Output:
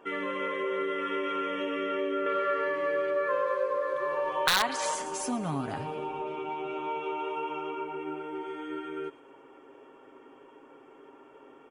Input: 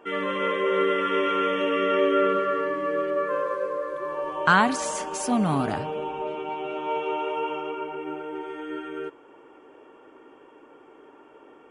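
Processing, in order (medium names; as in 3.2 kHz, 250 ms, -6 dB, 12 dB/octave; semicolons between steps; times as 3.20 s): comb 7.4 ms, depth 44%; feedback echo behind a high-pass 111 ms, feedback 52%, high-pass 3.3 kHz, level -12 dB; integer overflow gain 9.5 dB; compression 2.5:1, threshold -28 dBFS, peak gain reduction 9.5 dB; 2.26–4.95 s: ten-band graphic EQ 250 Hz -8 dB, 500 Hz +5 dB, 1 kHz +4 dB, 2 kHz +5 dB, 4 kHz +6 dB; trim -3 dB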